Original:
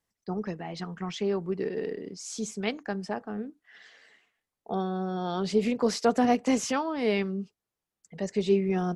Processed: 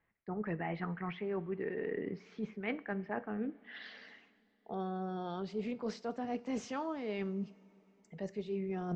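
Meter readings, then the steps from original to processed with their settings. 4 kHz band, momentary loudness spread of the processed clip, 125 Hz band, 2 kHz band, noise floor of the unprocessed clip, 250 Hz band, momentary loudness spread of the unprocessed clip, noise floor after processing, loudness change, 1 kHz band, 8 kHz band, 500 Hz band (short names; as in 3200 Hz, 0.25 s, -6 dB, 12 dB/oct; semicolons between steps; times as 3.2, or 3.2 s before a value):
-14.5 dB, 7 LU, -7.5 dB, -6.5 dB, under -85 dBFS, -9.5 dB, 12 LU, -72 dBFS, -10.0 dB, -10.0 dB, -20.5 dB, -10.5 dB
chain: reverse; compressor 10:1, threshold -38 dBFS, peak gain reduction 20.5 dB; reverse; low-pass sweep 2100 Hz -> 8200 Hz, 3.2–4.43; air absorption 230 m; two-slope reverb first 0.36 s, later 3.9 s, from -18 dB, DRR 14.5 dB; gain +4 dB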